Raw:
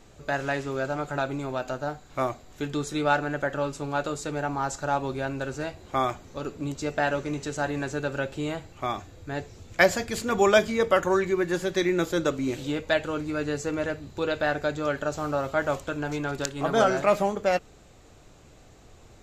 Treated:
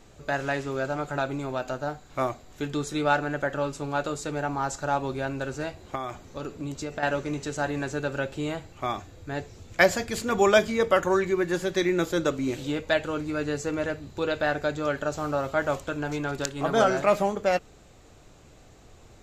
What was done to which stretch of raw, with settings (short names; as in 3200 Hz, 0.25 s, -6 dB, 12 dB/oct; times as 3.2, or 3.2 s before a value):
5.95–7.03 compressor 4:1, threshold -29 dBFS